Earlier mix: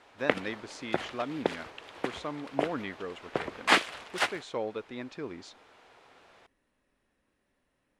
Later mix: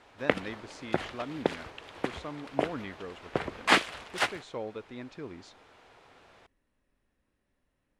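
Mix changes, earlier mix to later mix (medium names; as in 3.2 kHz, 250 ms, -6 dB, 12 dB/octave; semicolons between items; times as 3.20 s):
speech -4.5 dB; master: add bass shelf 140 Hz +10 dB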